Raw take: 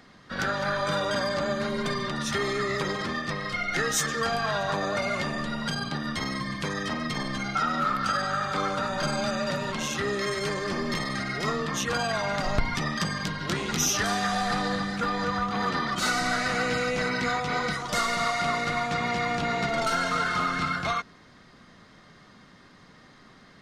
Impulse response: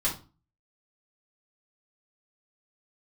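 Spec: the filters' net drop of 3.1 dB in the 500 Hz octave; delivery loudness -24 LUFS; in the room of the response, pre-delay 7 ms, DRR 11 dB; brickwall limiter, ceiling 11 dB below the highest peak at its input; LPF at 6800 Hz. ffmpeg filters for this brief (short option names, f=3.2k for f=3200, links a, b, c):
-filter_complex "[0:a]lowpass=6.8k,equalizer=f=500:t=o:g=-4,alimiter=limit=-23.5dB:level=0:latency=1,asplit=2[a][b];[1:a]atrim=start_sample=2205,adelay=7[c];[b][c]afir=irnorm=-1:irlink=0,volume=-19dB[d];[a][d]amix=inputs=2:normalize=0,volume=7.5dB"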